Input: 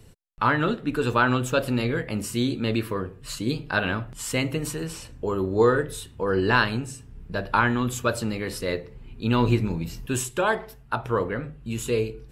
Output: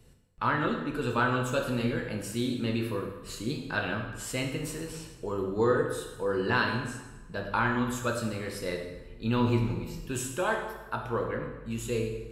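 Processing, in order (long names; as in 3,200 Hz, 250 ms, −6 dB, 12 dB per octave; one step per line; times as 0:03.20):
dense smooth reverb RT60 1.2 s, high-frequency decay 0.8×, DRR 2 dB
level −7.5 dB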